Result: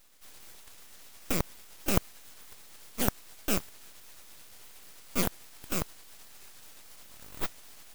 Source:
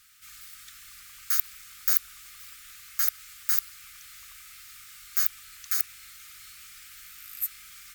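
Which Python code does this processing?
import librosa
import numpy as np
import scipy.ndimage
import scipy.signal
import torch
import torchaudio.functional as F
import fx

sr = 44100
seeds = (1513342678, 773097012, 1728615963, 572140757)

y = fx.pitch_ramps(x, sr, semitones=-7.0, every_ms=201)
y = np.abs(y)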